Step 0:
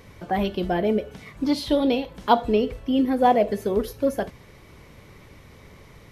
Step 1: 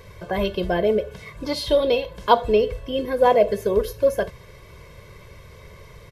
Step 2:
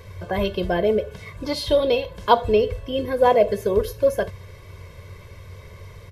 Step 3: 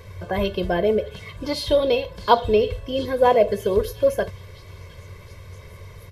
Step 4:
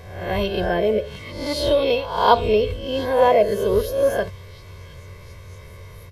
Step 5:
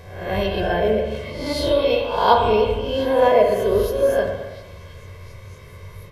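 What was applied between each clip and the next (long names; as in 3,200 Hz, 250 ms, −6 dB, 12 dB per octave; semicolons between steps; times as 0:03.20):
comb filter 1.9 ms, depth 73%; level +1 dB
parametric band 92 Hz +14 dB 0.2 octaves
echo through a band-pass that steps 712 ms, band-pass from 3,800 Hz, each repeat 0.7 octaves, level −10.5 dB
peak hold with a rise ahead of every peak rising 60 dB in 0.66 s; level −1 dB
spring reverb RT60 1.2 s, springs 41/56 ms, chirp 75 ms, DRR 2.5 dB; level −1 dB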